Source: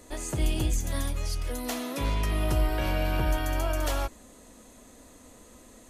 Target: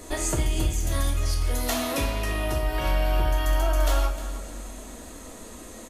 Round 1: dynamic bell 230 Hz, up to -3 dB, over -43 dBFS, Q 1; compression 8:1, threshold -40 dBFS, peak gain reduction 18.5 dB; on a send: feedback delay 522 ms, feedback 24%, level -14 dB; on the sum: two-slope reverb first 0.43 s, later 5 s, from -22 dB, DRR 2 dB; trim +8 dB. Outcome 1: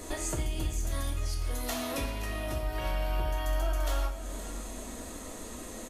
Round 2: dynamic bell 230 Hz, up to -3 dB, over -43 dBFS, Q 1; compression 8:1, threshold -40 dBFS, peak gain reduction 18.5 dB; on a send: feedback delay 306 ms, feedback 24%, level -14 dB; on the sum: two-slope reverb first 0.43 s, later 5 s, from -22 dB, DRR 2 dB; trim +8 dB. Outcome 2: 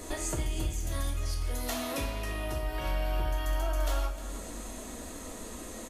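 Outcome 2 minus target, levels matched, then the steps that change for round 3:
compression: peak gain reduction +7.5 dB
change: compression 8:1, threshold -31.5 dBFS, peak gain reduction 11.5 dB

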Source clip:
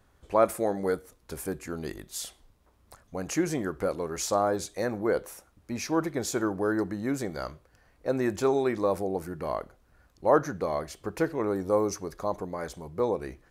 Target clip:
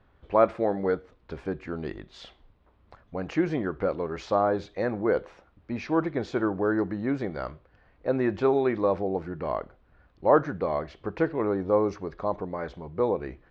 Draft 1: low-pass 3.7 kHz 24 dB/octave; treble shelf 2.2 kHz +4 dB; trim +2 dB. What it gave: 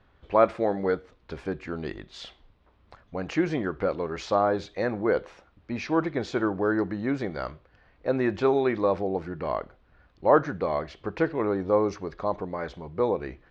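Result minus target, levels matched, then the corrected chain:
4 kHz band +4.5 dB
low-pass 3.7 kHz 24 dB/octave; treble shelf 2.2 kHz -2.5 dB; trim +2 dB

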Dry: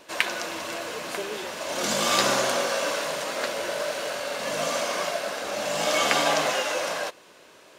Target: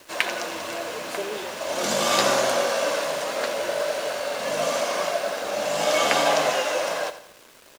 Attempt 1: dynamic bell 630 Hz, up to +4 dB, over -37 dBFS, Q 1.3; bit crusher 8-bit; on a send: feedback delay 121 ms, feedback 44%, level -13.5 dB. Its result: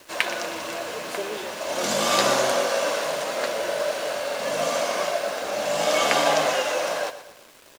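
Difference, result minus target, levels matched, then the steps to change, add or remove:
echo 35 ms late
change: feedback delay 86 ms, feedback 44%, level -13.5 dB

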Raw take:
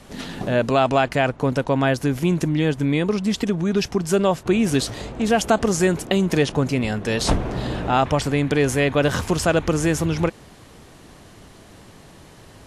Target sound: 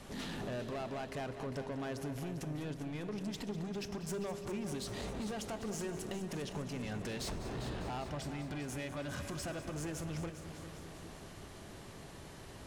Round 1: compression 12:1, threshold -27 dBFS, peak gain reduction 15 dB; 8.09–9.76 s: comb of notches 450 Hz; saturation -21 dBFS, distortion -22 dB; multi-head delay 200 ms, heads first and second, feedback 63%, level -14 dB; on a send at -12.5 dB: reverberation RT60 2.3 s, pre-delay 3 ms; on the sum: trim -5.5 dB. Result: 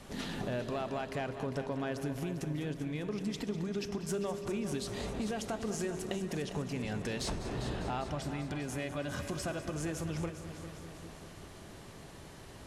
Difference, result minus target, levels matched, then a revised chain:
saturation: distortion -12 dB
compression 12:1, threshold -27 dBFS, peak gain reduction 15 dB; 8.09–9.76 s: comb of notches 450 Hz; saturation -31.5 dBFS, distortion -10 dB; multi-head delay 200 ms, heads first and second, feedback 63%, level -14 dB; on a send at -12.5 dB: reverberation RT60 2.3 s, pre-delay 3 ms; on the sum: trim -5.5 dB

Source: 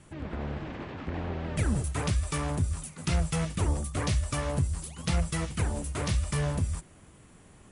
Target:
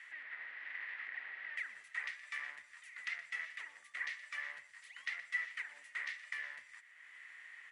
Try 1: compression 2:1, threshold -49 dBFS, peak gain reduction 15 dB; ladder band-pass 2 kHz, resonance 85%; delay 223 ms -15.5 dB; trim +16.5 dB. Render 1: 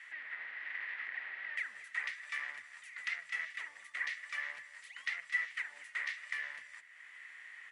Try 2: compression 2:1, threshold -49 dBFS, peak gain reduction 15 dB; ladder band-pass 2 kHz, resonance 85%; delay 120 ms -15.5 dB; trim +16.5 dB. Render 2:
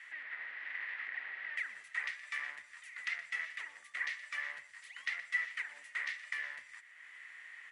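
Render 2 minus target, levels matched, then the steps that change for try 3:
compression: peak gain reduction -3 dB
change: compression 2:1, threshold -55.5 dBFS, peak gain reduction 18 dB

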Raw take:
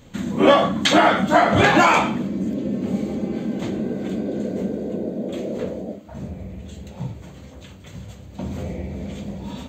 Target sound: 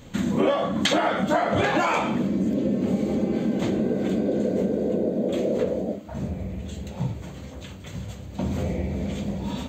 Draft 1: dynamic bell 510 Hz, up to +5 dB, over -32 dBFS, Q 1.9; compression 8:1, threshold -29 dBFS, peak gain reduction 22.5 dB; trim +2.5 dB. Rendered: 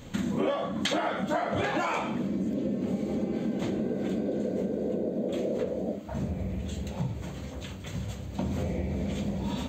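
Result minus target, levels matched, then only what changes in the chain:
compression: peak gain reduction +6.5 dB
change: compression 8:1, threshold -21.5 dBFS, peak gain reduction 16 dB

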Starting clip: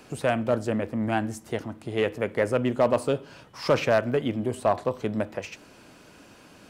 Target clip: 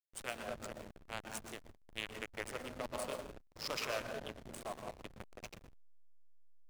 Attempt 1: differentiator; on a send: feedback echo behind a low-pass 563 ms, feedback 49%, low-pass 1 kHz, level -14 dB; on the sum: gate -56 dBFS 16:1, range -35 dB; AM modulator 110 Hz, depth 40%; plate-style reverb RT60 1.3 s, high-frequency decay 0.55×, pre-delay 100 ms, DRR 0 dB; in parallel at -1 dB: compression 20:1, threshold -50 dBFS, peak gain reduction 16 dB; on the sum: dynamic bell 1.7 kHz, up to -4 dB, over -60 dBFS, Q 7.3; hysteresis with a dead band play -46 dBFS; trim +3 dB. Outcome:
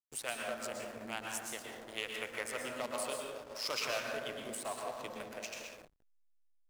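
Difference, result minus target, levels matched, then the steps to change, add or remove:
hysteresis with a dead band: distortion -12 dB; compression: peak gain reduction -7 dB
change: compression 20:1, threshold -57.5 dBFS, peak gain reduction 23 dB; change: hysteresis with a dead band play -35.5 dBFS

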